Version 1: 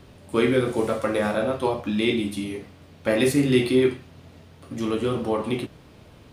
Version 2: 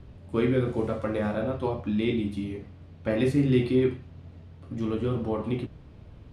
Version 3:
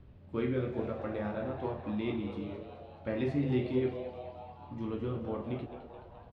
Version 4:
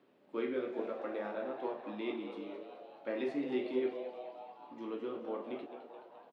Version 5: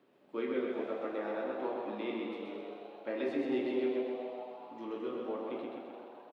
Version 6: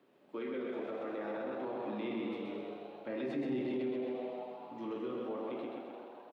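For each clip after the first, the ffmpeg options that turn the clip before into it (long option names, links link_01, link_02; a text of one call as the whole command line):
ffmpeg -i in.wav -af "aemphasis=mode=reproduction:type=bsi,volume=-7dB" out.wav
ffmpeg -i in.wav -filter_complex "[0:a]lowpass=3800,asplit=8[link_01][link_02][link_03][link_04][link_05][link_06][link_07][link_08];[link_02]adelay=213,afreqshift=120,volume=-11.5dB[link_09];[link_03]adelay=426,afreqshift=240,volume=-15.8dB[link_10];[link_04]adelay=639,afreqshift=360,volume=-20.1dB[link_11];[link_05]adelay=852,afreqshift=480,volume=-24.4dB[link_12];[link_06]adelay=1065,afreqshift=600,volume=-28.7dB[link_13];[link_07]adelay=1278,afreqshift=720,volume=-33dB[link_14];[link_08]adelay=1491,afreqshift=840,volume=-37.3dB[link_15];[link_01][link_09][link_10][link_11][link_12][link_13][link_14][link_15]amix=inputs=8:normalize=0,volume=-8dB" out.wav
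ffmpeg -i in.wav -af "highpass=frequency=280:width=0.5412,highpass=frequency=280:width=1.3066,volume=-1.5dB" out.wav
ffmpeg -i in.wav -af "aecho=1:1:129|258|387|516|645|774|903|1032:0.668|0.381|0.217|0.124|0.0706|0.0402|0.0229|0.0131" out.wav
ffmpeg -i in.wav -filter_complex "[0:a]acrossover=split=160[link_01][link_02];[link_01]dynaudnorm=framelen=230:gausssize=13:maxgain=12.5dB[link_03];[link_02]alimiter=level_in=8.5dB:limit=-24dB:level=0:latency=1:release=17,volume=-8.5dB[link_04];[link_03][link_04]amix=inputs=2:normalize=0" out.wav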